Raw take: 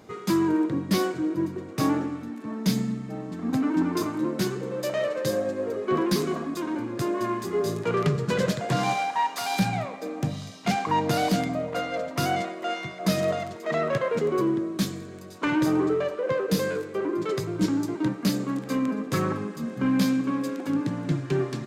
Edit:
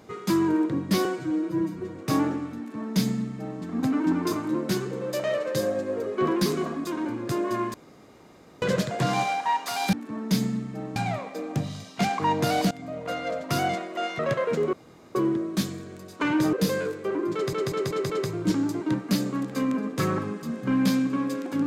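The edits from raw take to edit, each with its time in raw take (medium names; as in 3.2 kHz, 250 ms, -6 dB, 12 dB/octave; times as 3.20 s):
1.05–1.65 s: stretch 1.5×
2.28–3.31 s: copy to 9.63 s
7.44–8.32 s: room tone
11.38–12.09 s: fade in equal-power, from -21 dB
12.86–13.83 s: delete
14.37 s: insert room tone 0.42 s
15.75–16.43 s: delete
17.24 s: stutter 0.19 s, 5 plays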